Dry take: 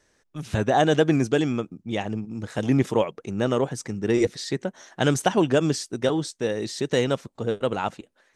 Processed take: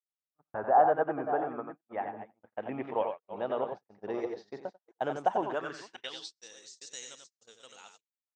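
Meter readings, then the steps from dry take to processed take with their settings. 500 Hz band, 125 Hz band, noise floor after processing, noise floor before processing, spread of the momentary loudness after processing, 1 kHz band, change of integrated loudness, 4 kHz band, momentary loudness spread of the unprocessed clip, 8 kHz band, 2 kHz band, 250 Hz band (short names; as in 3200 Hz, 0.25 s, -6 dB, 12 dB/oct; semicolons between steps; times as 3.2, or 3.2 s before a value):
-9.0 dB, -24.5 dB, under -85 dBFS, -67 dBFS, 20 LU, -1.0 dB, -8.0 dB, -14.0 dB, 10 LU, -14.0 dB, -11.0 dB, -17.5 dB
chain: reverse delay 0.351 s, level -11 dB; high shelf 6100 Hz +3.5 dB; low-pass sweep 1400 Hz -> 8100 Hz, 1.46–5.13; air absorption 100 m; echo 91 ms -6 dB; gate -27 dBFS, range -46 dB; band-pass sweep 770 Hz -> 6600 Hz, 5.42–6.5; gain -2.5 dB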